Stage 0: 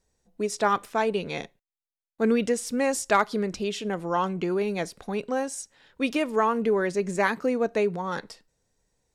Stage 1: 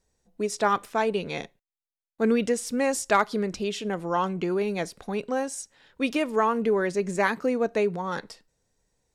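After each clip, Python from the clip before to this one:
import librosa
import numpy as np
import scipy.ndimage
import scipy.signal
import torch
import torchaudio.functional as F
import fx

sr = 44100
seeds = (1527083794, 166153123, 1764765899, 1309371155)

y = x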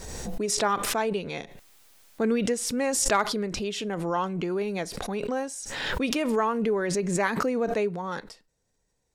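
y = fx.pre_swell(x, sr, db_per_s=34.0)
y = y * librosa.db_to_amplitude(-2.5)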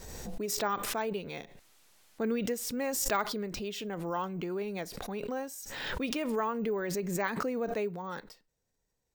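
y = np.repeat(x[::2], 2)[:len(x)]
y = y * librosa.db_to_amplitude(-6.5)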